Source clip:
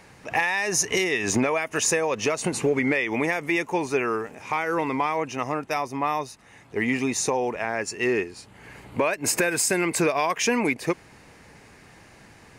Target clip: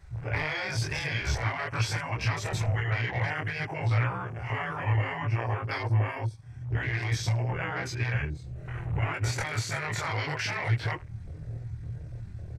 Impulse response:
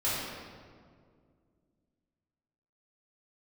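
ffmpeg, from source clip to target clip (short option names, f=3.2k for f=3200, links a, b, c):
-filter_complex "[0:a]afftfilt=real='re':imag='-im':win_size=2048:overlap=0.75,flanger=delay=4.3:depth=3.2:regen=55:speed=0.81:shape=triangular,afftfilt=real='re*lt(hypot(re,im),0.0631)':imag='im*lt(hypot(re,im),0.0631)':win_size=1024:overlap=0.75,asplit=2[a][b];[b]acompressor=threshold=-50dB:ratio=12,volume=1.5dB[c];[a][c]amix=inputs=2:normalize=0,aecho=1:1:82|164|246:0.112|0.0381|0.013,afwtdn=0.00447,lowshelf=f=170:t=q:w=3:g=12,acrossover=split=4700[d][e];[e]acompressor=threshold=-49dB:ratio=4:attack=1:release=60[f];[d][f]amix=inputs=2:normalize=0,asetrate=39289,aresample=44100,atempo=1.12246,volume=6.5dB"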